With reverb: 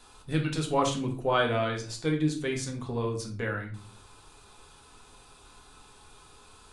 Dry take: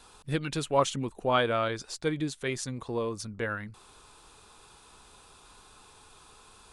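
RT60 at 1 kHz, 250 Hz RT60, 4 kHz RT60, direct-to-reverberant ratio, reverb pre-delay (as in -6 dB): 0.35 s, 0.70 s, 0.30 s, 1.0 dB, 3 ms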